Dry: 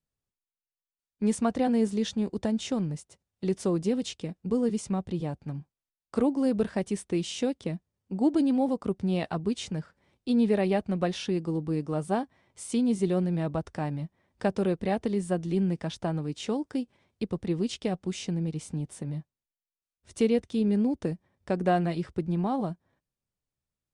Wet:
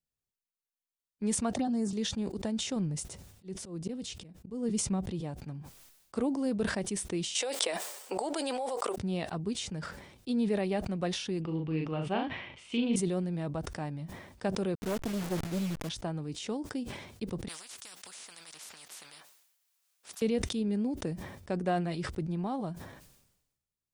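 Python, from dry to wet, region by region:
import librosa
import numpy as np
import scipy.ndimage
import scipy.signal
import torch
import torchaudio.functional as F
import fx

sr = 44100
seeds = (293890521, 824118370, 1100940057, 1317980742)

y = fx.chain(x, sr, fx.env_phaser(low_hz=200.0, high_hz=3400.0, full_db=-20.0),
    fx.notch_comb(f0_hz=490.0),
    fx.band_squash(depth_pct=100), at=(1.53, 1.93))
y = fx.chain(y, sr, fx.low_shelf(hz=290.0, db=5.5),
    fx.auto_swell(attack_ms=276.0), at=(2.76, 5.04))
y = fx.chain(y, sr, fx.highpass(hz=520.0, slope=24),
    fx.peak_eq(hz=8100.0, db=6.0, octaves=0.24),
    fx.env_flatten(amount_pct=100), at=(7.35, 8.96))
y = fx.chain(y, sr, fx.lowpass_res(hz=2800.0, q=4.3),
    fx.doubler(ms=38.0, db=-5.0), at=(11.41, 12.96))
y = fx.chain(y, sr, fx.delta_hold(step_db=-32.5),
    fx.doppler_dist(depth_ms=0.52), at=(14.75, 15.89))
y = fx.chain(y, sr, fx.highpass(hz=710.0, slope=12),
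    fx.spectral_comp(ratio=10.0), at=(17.48, 20.22))
y = fx.high_shelf(y, sr, hz=3700.0, db=5.5)
y = fx.sustainer(y, sr, db_per_s=58.0)
y = F.gain(torch.from_numpy(y), -6.0).numpy()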